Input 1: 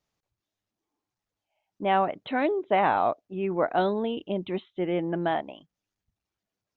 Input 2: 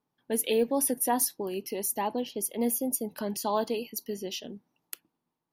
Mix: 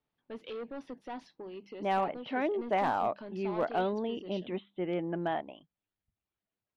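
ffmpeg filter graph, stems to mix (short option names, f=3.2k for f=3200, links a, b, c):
-filter_complex "[0:a]asoftclip=type=tanh:threshold=-11.5dB,volume=-5.5dB[a];[1:a]bandreject=f=50:t=h:w=6,bandreject=f=100:t=h:w=6,bandreject=f=150:t=h:w=6,bandreject=f=200:t=h:w=6,asoftclip=type=tanh:threshold=-27dB,volume=-9dB[b];[a][b]amix=inputs=2:normalize=0,lowpass=f=3.8k:w=0.5412,lowpass=f=3.8k:w=1.3066,asoftclip=type=hard:threshold=-21.5dB"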